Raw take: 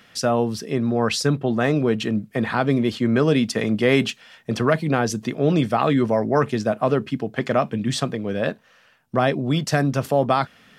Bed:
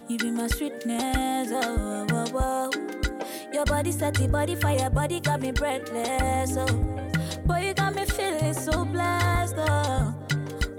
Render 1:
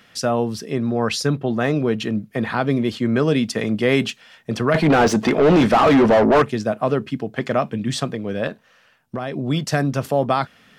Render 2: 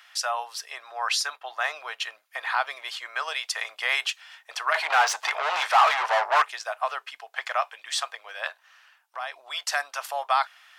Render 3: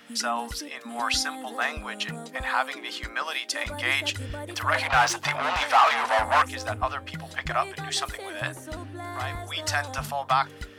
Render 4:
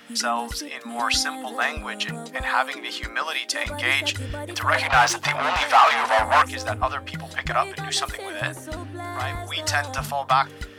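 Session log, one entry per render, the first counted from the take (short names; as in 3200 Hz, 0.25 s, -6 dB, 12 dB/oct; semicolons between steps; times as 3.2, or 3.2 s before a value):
1.14–2.79 notch 7900 Hz, Q 10; 4.74–6.42 overdrive pedal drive 29 dB, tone 1300 Hz, clips at -5.5 dBFS; 8.47–9.37 compressor, threshold -22 dBFS
steep high-pass 780 Hz 36 dB/oct
add bed -11.5 dB
gain +3.5 dB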